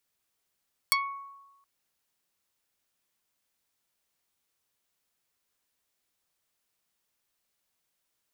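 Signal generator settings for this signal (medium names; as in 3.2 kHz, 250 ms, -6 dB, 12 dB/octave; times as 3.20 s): plucked string C#6, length 0.72 s, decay 1.11 s, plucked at 0.29, dark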